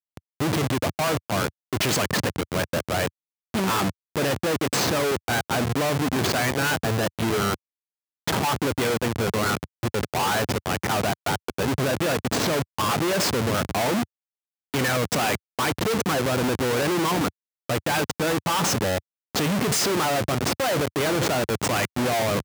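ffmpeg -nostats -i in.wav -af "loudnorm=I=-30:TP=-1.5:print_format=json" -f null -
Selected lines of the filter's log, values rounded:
"input_i" : "-24.2",
"input_tp" : "-11.9",
"input_lra" : "2.3",
"input_thresh" : "-34.2",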